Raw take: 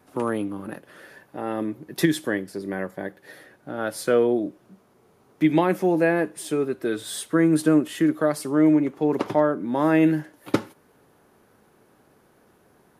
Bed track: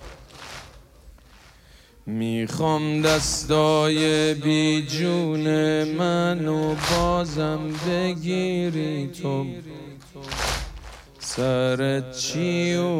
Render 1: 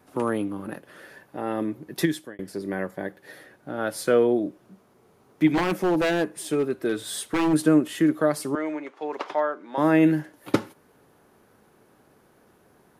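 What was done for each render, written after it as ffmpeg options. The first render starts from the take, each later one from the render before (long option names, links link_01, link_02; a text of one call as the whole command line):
ffmpeg -i in.wav -filter_complex "[0:a]asplit=3[link_01][link_02][link_03];[link_01]afade=type=out:start_time=5.47:duration=0.02[link_04];[link_02]aeval=exprs='0.15*(abs(mod(val(0)/0.15+3,4)-2)-1)':channel_layout=same,afade=type=in:start_time=5.47:duration=0.02,afade=type=out:start_time=7.52:duration=0.02[link_05];[link_03]afade=type=in:start_time=7.52:duration=0.02[link_06];[link_04][link_05][link_06]amix=inputs=3:normalize=0,asettb=1/sr,asplit=3[link_07][link_08][link_09];[link_07]atrim=end=8.554[link_10];[link_08]atrim=start=8.55:end=9.78,asetpts=PTS-STARTPTS,afade=type=in:duration=0.004:curve=qsin,afade=type=out:start_time=1.226:duration=0.004:curve=qsin,highpass=690,lowpass=5700[link_11];[link_09]atrim=start=9.776[link_12];[link_10][link_11]acrossfade=duration=0.004:curve1=hsin:curve2=qsin[link_13];[link_13][link_12]acrossfade=duration=0.004:curve1=qsin:curve2=hsin,asplit=2[link_14][link_15];[link_14]atrim=end=2.39,asetpts=PTS-STARTPTS,afade=type=out:start_time=1.92:duration=0.47[link_16];[link_15]atrim=start=2.39,asetpts=PTS-STARTPTS,afade=type=in:duration=0.004:curve=hsin[link_17];[link_16][link_17]concat=n=2:v=0:a=1" out.wav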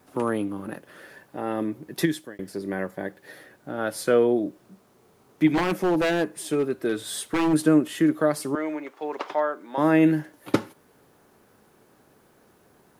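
ffmpeg -i in.wav -af "acrusher=bits=10:mix=0:aa=0.000001" out.wav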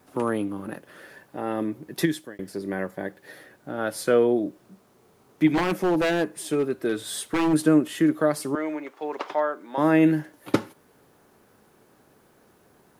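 ffmpeg -i in.wav -af anull out.wav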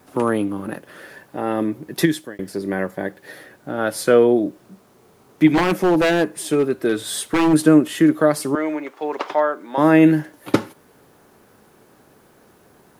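ffmpeg -i in.wav -af "volume=6dB,alimiter=limit=-1dB:level=0:latency=1" out.wav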